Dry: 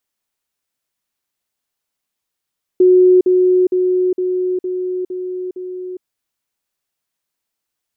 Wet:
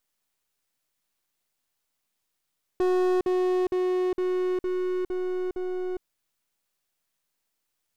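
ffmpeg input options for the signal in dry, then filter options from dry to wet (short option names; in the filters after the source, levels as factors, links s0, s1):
-f lavfi -i "aevalsrc='pow(10,(-6-3*floor(t/0.46))/20)*sin(2*PI*366*t)*clip(min(mod(t,0.46),0.41-mod(t,0.46))/0.005,0,1)':d=3.22:s=44100"
-filter_complex "[0:a]aeval=exprs='if(lt(val(0),0),0.251*val(0),val(0))':c=same,aeval=exprs='(tanh(12.6*val(0)+0.45)-tanh(0.45))/12.6':c=same,asplit=2[s0][s1];[s1]alimiter=level_in=2.24:limit=0.0631:level=0:latency=1,volume=0.447,volume=0.794[s2];[s0][s2]amix=inputs=2:normalize=0"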